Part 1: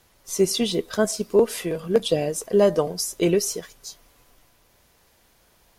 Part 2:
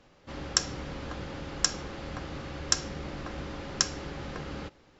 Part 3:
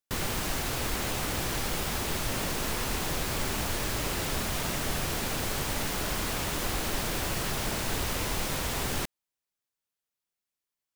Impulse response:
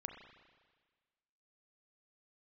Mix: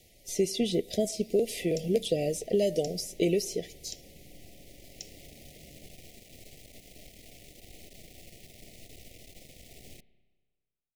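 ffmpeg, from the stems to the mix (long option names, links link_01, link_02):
-filter_complex "[0:a]acrossover=split=2300|4600[link_01][link_02][link_03];[link_01]acompressor=threshold=-25dB:ratio=4[link_04];[link_02]acompressor=threshold=-44dB:ratio=4[link_05];[link_03]acompressor=threshold=-42dB:ratio=4[link_06];[link_04][link_05][link_06]amix=inputs=3:normalize=0,volume=0dB,asplit=3[link_07][link_08][link_09];[link_08]volume=-15.5dB[link_10];[1:a]adelay=1200,volume=-18dB[link_11];[2:a]aeval=exprs='(tanh(22.4*val(0)+0.8)-tanh(0.8))/22.4':channel_layout=same,adelay=950,volume=-18dB,asplit=2[link_12][link_13];[link_13]volume=-6dB[link_14];[link_09]apad=whole_len=524950[link_15];[link_12][link_15]sidechaincompress=threshold=-47dB:ratio=8:attack=16:release=1140[link_16];[3:a]atrim=start_sample=2205[link_17];[link_10][link_14]amix=inputs=2:normalize=0[link_18];[link_18][link_17]afir=irnorm=-1:irlink=0[link_19];[link_07][link_11][link_16][link_19]amix=inputs=4:normalize=0,asuperstop=centerf=1200:order=12:qfactor=0.97"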